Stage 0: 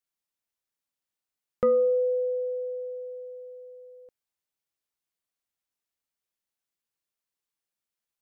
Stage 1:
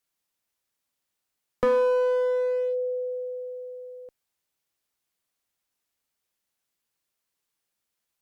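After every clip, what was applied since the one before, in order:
in parallel at +2 dB: downward compressor 6 to 1, threshold −31 dBFS, peak gain reduction 11 dB
on the sum: asymmetric clip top −24 dBFS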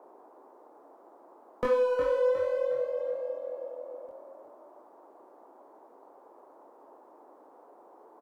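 multi-voice chorus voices 2, 1.1 Hz, delay 22 ms, depth 3.8 ms
echo with shifted repeats 360 ms, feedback 41%, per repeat +41 Hz, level −7.5 dB
noise in a band 290–1,000 Hz −54 dBFS
level −1 dB

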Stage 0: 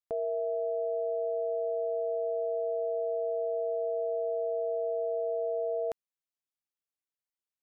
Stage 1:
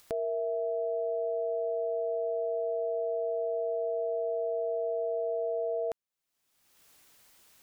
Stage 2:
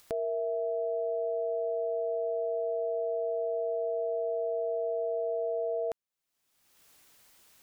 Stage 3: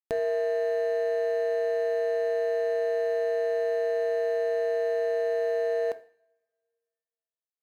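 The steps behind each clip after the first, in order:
upward compression, threshold −35 dBFS
no processing that can be heard
running median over 41 samples; coupled-rooms reverb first 0.49 s, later 2 s, from −27 dB, DRR 11.5 dB; level +5.5 dB

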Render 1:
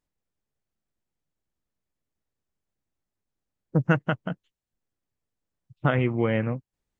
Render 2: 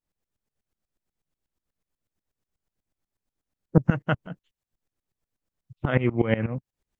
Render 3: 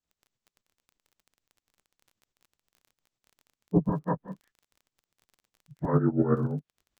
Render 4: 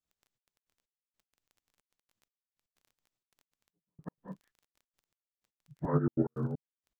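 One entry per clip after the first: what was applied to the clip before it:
tremolo with a ramp in dB swelling 8.2 Hz, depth 19 dB; level +7 dB
partials spread apart or drawn together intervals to 78%; treble cut that deepens with the level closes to 1,200 Hz, closed at −24 dBFS; surface crackle 23 per second −45 dBFS
gate pattern "xxxx.x.xx...x.x" 158 BPM −60 dB; level −4.5 dB

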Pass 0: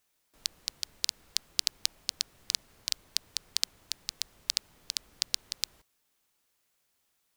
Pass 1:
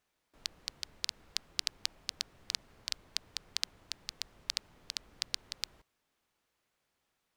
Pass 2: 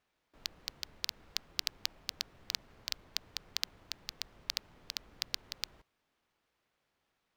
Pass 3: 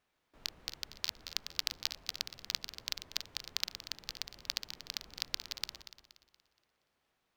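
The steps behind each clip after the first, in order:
low-pass filter 2,300 Hz 6 dB per octave; level +1.5 dB
running median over 5 samples; level +1.5 dB
feedback delay that plays each chunk backwards 118 ms, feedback 60%, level −9.5 dB

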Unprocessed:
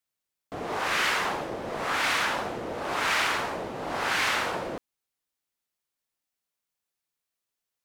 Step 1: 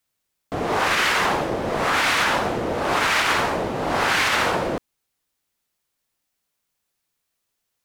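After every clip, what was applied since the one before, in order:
low-shelf EQ 200 Hz +4.5 dB
brickwall limiter −19 dBFS, peak gain reduction 6 dB
level +8.5 dB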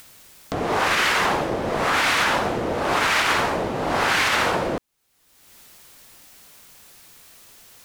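upward compression, threshold −25 dBFS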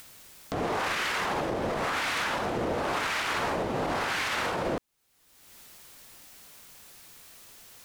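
brickwall limiter −18.5 dBFS, peak gain reduction 8 dB
level −2.5 dB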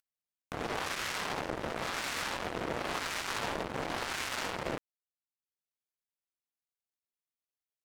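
power curve on the samples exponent 3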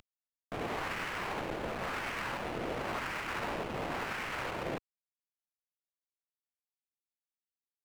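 variable-slope delta modulation 16 kbit/s
power curve on the samples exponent 0.5
level −5 dB

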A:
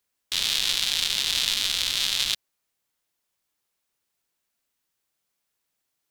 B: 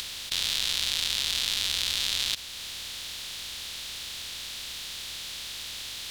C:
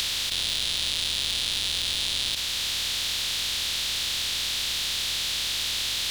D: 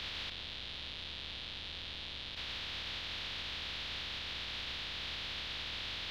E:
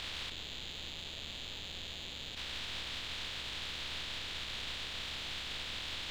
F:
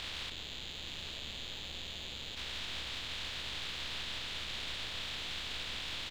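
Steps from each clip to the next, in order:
compressor on every frequency bin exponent 0.2; parametric band 71 Hz +10 dB 0.53 octaves; upward compression, threshold −24 dBFS; level −8 dB
compressor on every frequency bin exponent 0.4; soft clipping −17 dBFS, distortion −11 dB; level +2 dB
brickwall limiter −22 dBFS, peak gain reduction 7 dB; high-frequency loss of the air 320 metres; level −2.5 dB
gain on one half-wave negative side −7 dB; level +2.5 dB
single-tap delay 875 ms −8.5 dB

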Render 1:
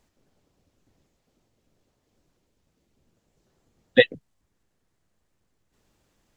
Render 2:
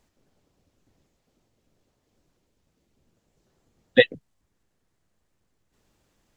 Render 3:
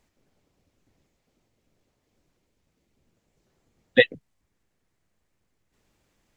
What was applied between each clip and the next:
no processing that can be heard
parametric band 2,200 Hz +4 dB 0.5 octaves; level −1.5 dB

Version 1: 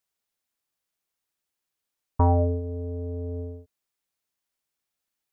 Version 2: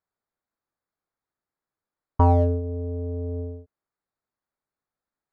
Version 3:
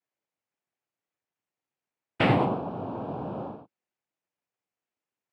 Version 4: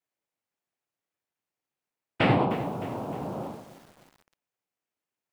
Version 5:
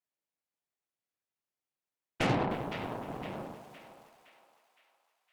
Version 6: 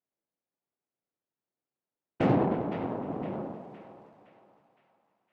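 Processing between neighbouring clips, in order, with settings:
adaptive Wiener filter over 15 samples; parametric band 1,300 Hz +2.5 dB; level +2.5 dB
cochlear-implant simulation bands 4; level −1.5 dB
feedback echo at a low word length 307 ms, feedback 55%, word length 7 bits, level −14 dB
feedback echo with a high-pass in the loop 513 ms, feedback 52%, high-pass 860 Hz, level −8 dB; harmonic generator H 8 −18 dB, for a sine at −10.5 dBFS; pitch vibrato 0.43 Hz 5.9 cents; level −7 dB
resonant band-pass 280 Hz, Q 0.57; convolution reverb RT60 2.7 s, pre-delay 3 ms, DRR 13 dB; level +7 dB

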